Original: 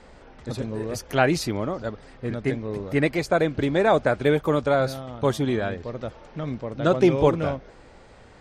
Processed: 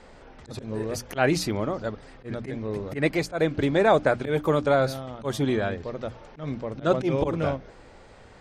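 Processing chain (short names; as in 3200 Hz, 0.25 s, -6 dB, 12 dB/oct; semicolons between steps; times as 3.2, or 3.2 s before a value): auto swell 0.117 s; notches 60/120/180/240/300 Hz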